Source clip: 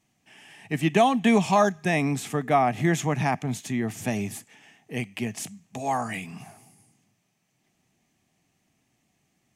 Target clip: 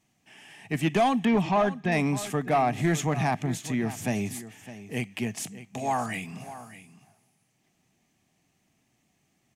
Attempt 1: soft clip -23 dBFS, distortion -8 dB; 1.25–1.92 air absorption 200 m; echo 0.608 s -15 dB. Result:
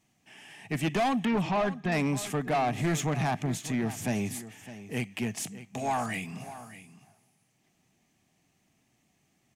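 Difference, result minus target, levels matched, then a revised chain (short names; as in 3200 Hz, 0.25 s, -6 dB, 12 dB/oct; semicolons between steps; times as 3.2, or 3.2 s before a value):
soft clip: distortion +6 dB
soft clip -16 dBFS, distortion -14 dB; 1.25–1.92 air absorption 200 m; echo 0.608 s -15 dB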